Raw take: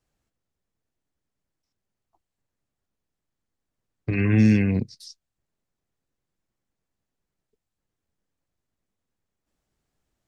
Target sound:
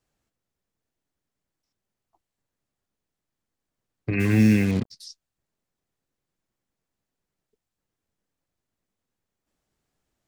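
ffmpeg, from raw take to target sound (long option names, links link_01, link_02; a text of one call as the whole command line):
ffmpeg -i in.wav -filter_complex "[0:a]lowshelf=frequency=110:gain=-5,asplit=3[link_01][link_02][link_03];[link_01]afade=type=out:start_time=4.19:duration=0.02[link_04];[link_02]acrusher=bits=5:mix=0:aa=0.5,afade=type=in:start_time=4.19:duration=0.02,afade=type=out:start_time=4.9:duration=0.02[link_05];[link_03]afade=type=in:start_time=4.9:duration=0.02[link_06];[link_04][link_05][link_06]amix=inputs=3:normalize=0,volume=1dB" out.wav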